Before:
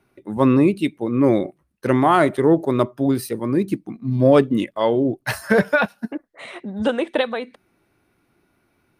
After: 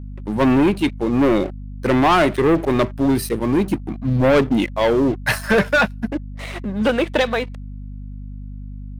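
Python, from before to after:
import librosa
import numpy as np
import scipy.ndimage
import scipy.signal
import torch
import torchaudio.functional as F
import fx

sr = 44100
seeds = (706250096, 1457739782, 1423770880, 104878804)

y = fx.leveller(x, sr, passes=3)
y = fx.dynamic_eq(y, sr, hz=2300.0, q=0.83, threshold_db=-26.0, ratio=4.0, max_db=4)
y = fx.add_hum(y, sr, base_hz=50, snr_db=13)
y = y * librosa.db_to_amplitude(-7.0)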